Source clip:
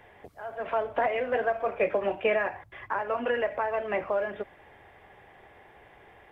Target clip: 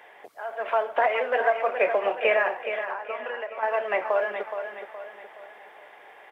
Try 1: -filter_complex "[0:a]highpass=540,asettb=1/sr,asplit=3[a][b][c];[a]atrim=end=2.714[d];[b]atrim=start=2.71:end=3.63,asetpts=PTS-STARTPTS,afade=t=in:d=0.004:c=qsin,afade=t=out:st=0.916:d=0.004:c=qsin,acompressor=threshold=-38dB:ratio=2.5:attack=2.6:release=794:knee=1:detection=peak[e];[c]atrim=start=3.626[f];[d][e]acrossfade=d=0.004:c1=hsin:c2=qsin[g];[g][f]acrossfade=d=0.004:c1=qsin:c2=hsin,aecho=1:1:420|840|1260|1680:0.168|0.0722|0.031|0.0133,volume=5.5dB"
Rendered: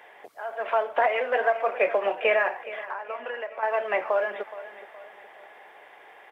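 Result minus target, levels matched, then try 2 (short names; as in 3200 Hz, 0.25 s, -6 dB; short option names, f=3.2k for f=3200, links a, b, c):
echo-to-direct -7 dB
-filter_complex "[0:a]highpass=540,asettb=1/sr,asplit=3[a][b][c];[a]atrim=end=2.714[d];[b]atrim=start=2.71:end=3.63,asetpts=PTS-STARTPTS,afade=t=in:d=0.004:c=qsin,afade=t=out:st=0.916:d=0.004:c=qsin,acompressor=threshold=-38dB:ratio=2.5:attack=2.6:release=794:knee=1:detection=peak[e];[c]atrim=start=3.626[f];[d][e]acrossfade=d=0.004:c1=hsin:c2=qsin[g];[g][f]acrossfade=d=0.004:c1=qsin:c2=hsin,aecho=1:1:420|840|1260|1680|2100:0.376|0.162|0.0695|0.0299|0.0128,volume=5.5dB"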